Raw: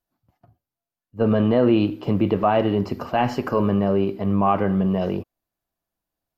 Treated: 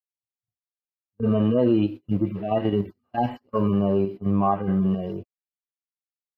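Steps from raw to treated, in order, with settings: median-filter separation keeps harmonic; gate -29 dBFS, range -33 dB; in parallel at -1 dB: level quantiser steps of 22 dB; on the sum: gain -5.5 dB

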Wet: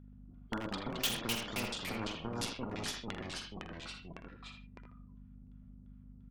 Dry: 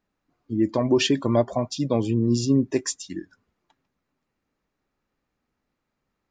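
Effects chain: low-pass opened by the level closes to 1100 Hz, open at -16 dBFS; high shelf 6100 Hz -11 dB; negative-ratio compressor -26 dBFS, ratio -1; LFO band-pass square 2.9 Hz 220–3300 Hz; added harmonics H 6 -16 dB, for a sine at -18.5 dBFS; hum 50 Hz, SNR 19 dB; doubler 44 ms -10.5 dB; small resonant body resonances 1400/3400 Hz, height 13 dB, ringing for 55 ms; echoes that change speed 0.128 s, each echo -2 st, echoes 3, each echo -6 dB; speakerphone echo 80 ms, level -7 dB; spectral compressor 2:1; gain -6.5 dB

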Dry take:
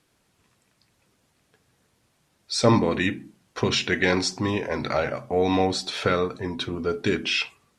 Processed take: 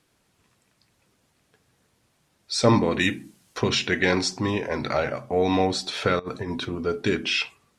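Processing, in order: 2.99–3.58 high shelf 3900 Hz +11.5 dB; 6.19–6.65 negative-ratio compressor -30 dBFS, ratio -0.5

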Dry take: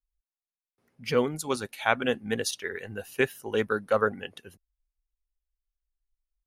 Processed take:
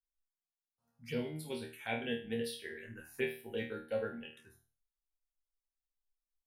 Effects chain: resonator bank D#2 fifth, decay 0.39 s; envelope phaser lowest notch 360 Hz, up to 1200 Hz, full sweep at -41.5 dBFS; gain +3.5 dB

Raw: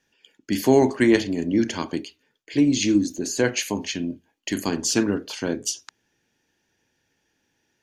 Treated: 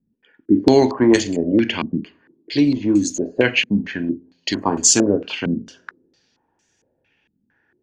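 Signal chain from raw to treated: two-slope reverb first 0.44 s, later 1.6 s, from -17 dB, DRR 16.5 dB; stepped low-pass 4.4 Hz 210–7400 Hz; gain +2.5 dB

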